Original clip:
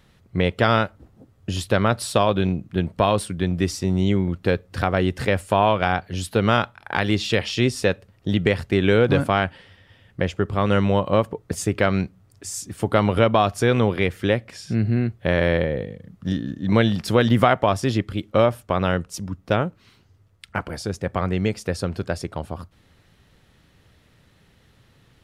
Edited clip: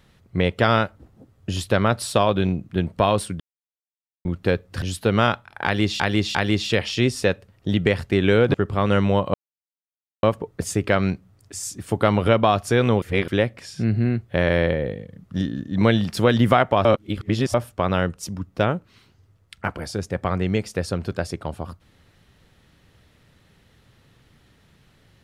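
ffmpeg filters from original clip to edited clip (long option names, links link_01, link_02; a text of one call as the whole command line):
ffmpeg -i in.wav -filter_complex "[0:a]asplit=12[link_01][link_02][link_03][link_04][link_05][link_06][link_07][link_08][link_09][link_10][link_11][link_12];[link_01]atrim=end=3.4,asetpts=PTS-STARTPTS,afade=type=out:start_time=3.396:duration=0.004:curve=hsin[link_13];[link_02]atrim=start=3.4:end=4.25,asetpts=PTS-STARTPTS,volume=0[link_14];[link_03]atrim=start=4.25:end=4.822,asetpts=PTS-STARTPTS,afade=type=in:duration=0.004:curve=hsin[link_15];[link_04]atrim=start=6.118:end=7.302[link_16];[link_05]atrim=start=6.948:end=7.302[link_17];[link_06]atrim=start=6.948:end=9.142[link_18];[link_07]atrim=start=10.338:end=11.14,asetpts=PTS-STARTPTS,afade=type=out:start_time=0.798:duration=0.004:curve=hsin,apad=pad_dur=0.89[link_19];[link_08]atrim=start=11.14:end=13.932,asetpts=PTS-STARTPTS,afade=type=in:duration=0.004:curve=hsin[link_20];[link_09]atrim=start=13.928:end=14.192,asetpts=PTS-STARTPTS,areverse[link_21];[link_10]atrim=start=14.188:end=17.762[link_22];[link_11]atrim=start=17.758:end=18.452,asetpts=PTS-STARTPTS,areverse[link_23];[link_12]atrim=start=18.448[link_24];[link_13][link_14][link_15]concat=n=3:v=0:a=1[link_25];[link_25][link_16]acrossfade=duration=0.004:curve1=hsin:curve2=hsin[link_26];[link_26][link_17]acrossfade=duration=0.004:curve1=hsin:curve2=hsin[link_27];[link_27][link_18]acrossfade=duration=0.004:curve1=hsin:curve2=hsin[link_28];[link_19][link_20]concat=n=2:v=0:a=1[link_29];[link_28][link_29]acrossfade=duration=0.004:curve1=hsin:curve2=hsin[link_30];[link_30][link_21]acrossfade=duration=0.004:curve1=hsin:curve2=hsin[link_31];[link_31][link_22]acrossfade=duration=0.004:curve1=hsin:curve2=hsin[link_32];[link_32][link_23]acrossfade=duration=0.004:curve1=hsin:curve2=hsin[link_33];[link_33][link_24]acrossfade=duration=0.004:curve1=hsin:curve2=hsin" out.wav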